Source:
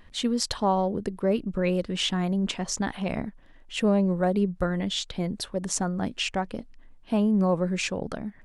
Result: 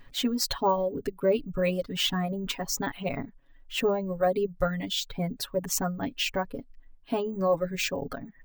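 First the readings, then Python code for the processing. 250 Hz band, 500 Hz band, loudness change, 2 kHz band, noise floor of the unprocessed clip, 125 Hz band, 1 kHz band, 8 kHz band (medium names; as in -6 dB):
-6.5 dB, +0.5 dB, -2.0 dB, 0.0 dB, -51 dBFS, -5.5 dB, -1.0 dB, -1.0 dB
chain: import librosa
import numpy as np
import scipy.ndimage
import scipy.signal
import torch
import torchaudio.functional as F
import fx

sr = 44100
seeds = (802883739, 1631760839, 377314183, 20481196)

y = np.repeat(x[::2], 2)[:len(x)]
y = fx.dereverb_blind(y, sr, rt60_s=1.2)
y = y + 0.9 * np.pad(y, (int(7.2 * sr / 1000.0), 0))[:len(y)]
y = y * librosa.db_to_amplitude(-2.0)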